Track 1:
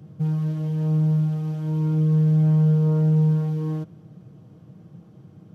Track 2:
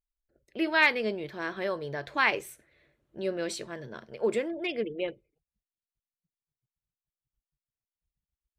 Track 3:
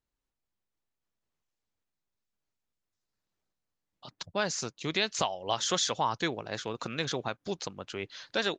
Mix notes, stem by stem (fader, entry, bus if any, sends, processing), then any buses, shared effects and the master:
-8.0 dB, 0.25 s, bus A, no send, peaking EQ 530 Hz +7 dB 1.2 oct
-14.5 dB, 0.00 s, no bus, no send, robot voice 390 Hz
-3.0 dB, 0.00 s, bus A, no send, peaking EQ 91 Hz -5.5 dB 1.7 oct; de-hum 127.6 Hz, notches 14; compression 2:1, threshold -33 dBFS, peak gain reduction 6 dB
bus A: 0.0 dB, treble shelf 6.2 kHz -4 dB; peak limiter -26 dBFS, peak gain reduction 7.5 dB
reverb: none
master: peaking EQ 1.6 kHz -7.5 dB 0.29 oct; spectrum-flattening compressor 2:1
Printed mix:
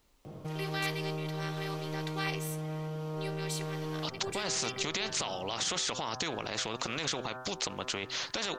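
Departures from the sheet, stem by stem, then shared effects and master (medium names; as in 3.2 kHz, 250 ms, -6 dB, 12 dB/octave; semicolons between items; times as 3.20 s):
stem 2 -14.5 dB -> -5.5 dB; stem 3 -3.0 dB -> +5.5 dB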